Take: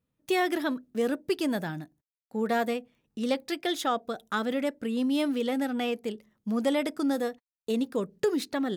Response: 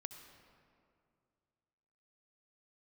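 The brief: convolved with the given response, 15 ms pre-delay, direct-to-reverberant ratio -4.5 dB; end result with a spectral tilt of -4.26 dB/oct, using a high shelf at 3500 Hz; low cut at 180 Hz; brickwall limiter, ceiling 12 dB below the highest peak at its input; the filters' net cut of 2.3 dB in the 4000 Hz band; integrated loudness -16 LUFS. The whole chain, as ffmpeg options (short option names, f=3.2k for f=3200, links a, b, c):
-filter_complex "[0:a]highpass=180,highshelf=f=3.5k:g=8.5,equalizer=f=4k:t=o:g=-8.5,alimiter=level_in=2dB:limit=-24dB:level=0:latency=1,volume=-2dB,asplit=2[a][b];[1:a]atrim=start_sample=2205,adelay=15[c];[b][c]afir=irnorm=-1:irlink=0,volume=8.5dB[d];[a][d]amix=inputs=2:normalize=0,volume=13.5dB"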